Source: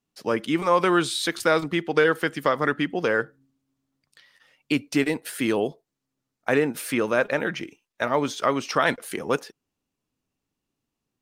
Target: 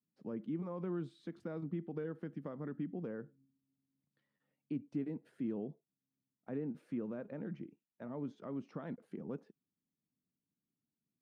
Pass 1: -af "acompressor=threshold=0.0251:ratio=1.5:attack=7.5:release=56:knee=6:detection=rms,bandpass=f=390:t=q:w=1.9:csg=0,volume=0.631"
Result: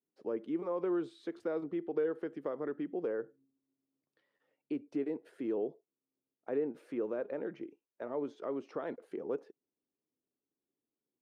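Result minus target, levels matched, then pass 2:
500 Hz band +4.5 dB
-af "acompressor=threshold=0.0251:ratio=1.5:attack=7.5:release=56:knee=6:detection=rms,bandpass=f=190:t=q:w=1.9:csg=0,volume=0.631"

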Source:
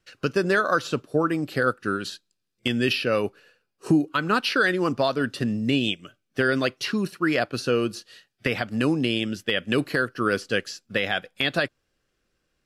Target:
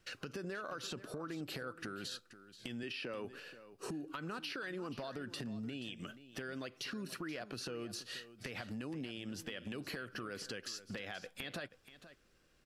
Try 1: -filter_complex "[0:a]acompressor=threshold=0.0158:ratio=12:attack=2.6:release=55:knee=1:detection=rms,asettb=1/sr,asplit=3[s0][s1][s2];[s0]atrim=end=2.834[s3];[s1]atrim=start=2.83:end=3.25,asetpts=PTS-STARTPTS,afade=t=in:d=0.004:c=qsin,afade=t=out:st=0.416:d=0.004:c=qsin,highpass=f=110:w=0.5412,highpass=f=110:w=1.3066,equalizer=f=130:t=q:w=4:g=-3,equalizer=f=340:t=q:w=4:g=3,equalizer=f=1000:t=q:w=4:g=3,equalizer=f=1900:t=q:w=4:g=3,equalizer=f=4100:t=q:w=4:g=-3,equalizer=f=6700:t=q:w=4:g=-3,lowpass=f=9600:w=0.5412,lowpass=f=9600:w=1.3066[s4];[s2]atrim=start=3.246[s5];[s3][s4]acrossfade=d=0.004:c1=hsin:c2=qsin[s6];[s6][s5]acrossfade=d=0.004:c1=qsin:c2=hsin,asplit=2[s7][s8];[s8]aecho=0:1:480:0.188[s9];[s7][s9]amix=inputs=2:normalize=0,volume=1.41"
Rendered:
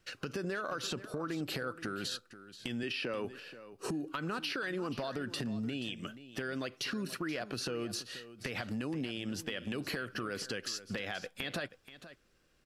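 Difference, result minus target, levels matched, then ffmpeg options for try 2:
compression: peak gain reduction -6 dB
-filter_complex "[0:a]acompressor=threshold=0.0075:ratio=12:attack=2.6:release=55:knee=1:detection=rms,asettb=1/sr,asplit=3[s0][s1][s2];[s0]atrim=end=2.834[s3];[s1]atrim=start=2.83:end=3.25,asetpts=PTS-STARTPTS,afade=t=in:d=0.004:c=qsin,afade=t=out:st=0.416:d=0.004:c=qsin,highpass=f=110:w=0.5412,highpass=f=110:w=1.3066,equalizer=f=130:t=q:w=4:g=-3,equalizer=f=340:t=q:w=4:g=3,equalizer=f=1000:t=q:w=4:g=3,equalizer=f=1900:t=q:w=4:g=3,equalizer=f=4100:t=q:w=4:g=-3,equalizer=f=6700:t=q:w=4:g=-3,lowpass=f=9600:w=0.5412,lowpass=f=9600:w=1.3066[s4];[s2]atrim=start=3.246[s5];[s3][s4]acrossfade=d=0.004:c1=hsin:c2=qsin[s6];[s6][s5]acrossfade=d=0.004:c1=qsin:c2=hsin,asplit=2[s7][s8];[s8]aecho=0:1:480:0.188[s9];[s7][s9]amix=inputs=2:normalize=0,volume=1.41"

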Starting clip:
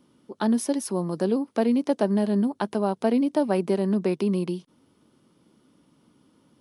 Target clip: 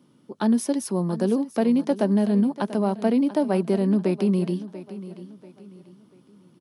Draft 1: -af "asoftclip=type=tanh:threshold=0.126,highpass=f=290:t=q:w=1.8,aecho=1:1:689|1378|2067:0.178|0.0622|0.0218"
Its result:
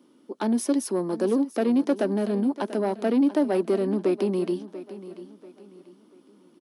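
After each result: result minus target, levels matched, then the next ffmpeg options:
saturation: distortion +16 dB; 125 Hz band -6.5 dB
-af "asoftclip=type=tanh:threshold=0.422,highpass=f=290:t=q:w=1.8,aecho=1:1:689|1378|2067:0.178|0.0622|0.0218"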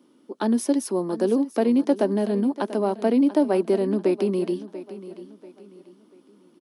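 125 Hz band -7.0 dB
-af "asoftclip=type=tanh:threshold=0.422,highpass=f=130:t=q:w=1.8,aecho=1:1:689|1378|2067:0.178|0.0622|0.0218"

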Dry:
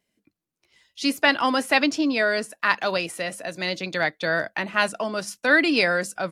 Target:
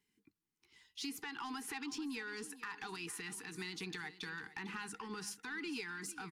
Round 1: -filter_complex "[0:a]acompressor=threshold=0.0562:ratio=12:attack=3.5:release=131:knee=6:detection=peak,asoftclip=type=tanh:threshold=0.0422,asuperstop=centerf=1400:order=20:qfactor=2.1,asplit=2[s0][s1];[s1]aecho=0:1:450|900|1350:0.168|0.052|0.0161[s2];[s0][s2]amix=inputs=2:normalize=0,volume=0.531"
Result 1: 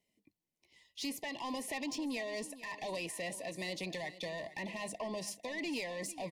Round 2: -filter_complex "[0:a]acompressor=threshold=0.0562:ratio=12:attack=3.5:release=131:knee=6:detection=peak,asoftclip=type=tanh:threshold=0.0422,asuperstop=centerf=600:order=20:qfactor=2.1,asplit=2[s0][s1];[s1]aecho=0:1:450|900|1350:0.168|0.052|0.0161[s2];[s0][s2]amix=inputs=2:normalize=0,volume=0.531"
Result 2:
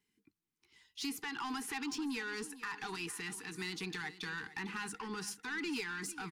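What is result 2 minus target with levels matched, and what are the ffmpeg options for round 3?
compression: peak gain reduction -6 dB
-filter_complex "[0:a]acompressor=threshold=0.0266:ratio=12:attack=3.5:release=131:knee=6:detection=peak,asoftclip=type=tanh:threshold=0.0422,asuperstop=centerf=600:order=20:qfactor=2.1,asplit=2[s0][s1];[s1]aecho=0:1:450|900|1350:0.168|0.052|0.0161[s2];[s0][s2]amix=inputs=2:normalize=0,volume=0.531"

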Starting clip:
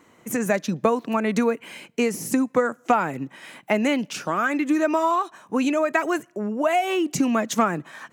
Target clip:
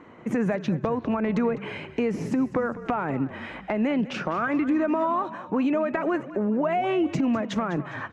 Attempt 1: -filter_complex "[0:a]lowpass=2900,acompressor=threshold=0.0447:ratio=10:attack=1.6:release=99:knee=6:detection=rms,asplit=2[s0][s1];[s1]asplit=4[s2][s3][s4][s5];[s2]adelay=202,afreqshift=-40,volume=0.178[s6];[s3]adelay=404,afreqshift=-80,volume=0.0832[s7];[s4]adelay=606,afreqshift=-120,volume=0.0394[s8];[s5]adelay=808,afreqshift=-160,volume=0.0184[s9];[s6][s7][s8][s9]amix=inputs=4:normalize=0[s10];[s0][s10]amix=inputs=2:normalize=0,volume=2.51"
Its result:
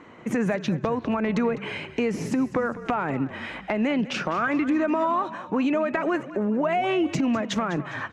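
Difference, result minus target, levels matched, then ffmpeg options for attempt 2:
4 kHz band +4.5 dB
-filter_complex "[0:a]lowpass=2900,acompressor=threshold=0.0447:ratio=10:attack=1.6:release=99:knee=6:detection=rms,highshelf=f=2300:g=-8,asplit=2[s0][s1];[s1]asplit=4[s2][s3][s4][s5];[s2]adelay=202,afreqshift=-40,volume=0.178[s6];[s3]adelay=404,afreqshift=-80,volume=0.0832[s7];[s4]adelay=606,afreqshift=-120,volume=0.0394[s8];[s5]adelay=808,afreqshift=-160,volume=0.0184[s9];[s6][s7][s8][s9]amix=inputs=4:normalize=0[s10];[s0][s10]amix=inputs=2:normalize=0,volume=2.51"

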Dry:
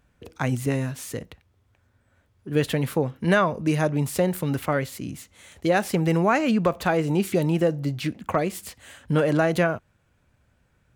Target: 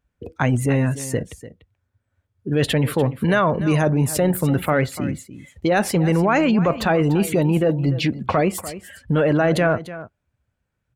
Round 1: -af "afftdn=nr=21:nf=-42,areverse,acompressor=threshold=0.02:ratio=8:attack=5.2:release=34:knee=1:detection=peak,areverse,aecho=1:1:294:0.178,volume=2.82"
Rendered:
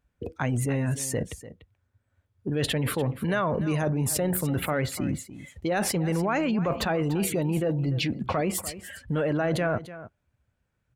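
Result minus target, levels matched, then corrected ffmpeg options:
compression: peak gain reduction +8.5 dB
-af "afftdn=nr=21:nf=-42,areverse,acompressor=threshold=0.0596:ratio=8:attack=5.2:release=34:knee=1:detection=peak,areverse,aecho=1:1:294:0.178,volume=2.82"

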